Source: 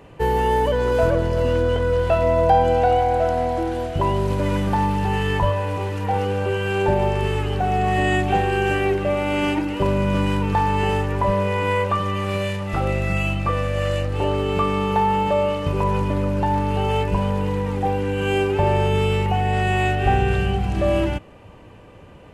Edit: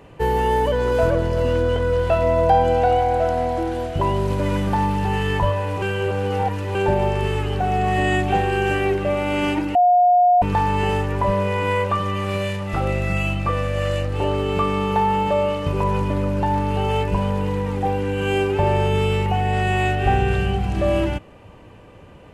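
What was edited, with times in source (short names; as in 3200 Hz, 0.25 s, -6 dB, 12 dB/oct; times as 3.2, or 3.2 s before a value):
5.82–6.75 reverse
9.75–10.42 bleep 715 Hz -11 dBFS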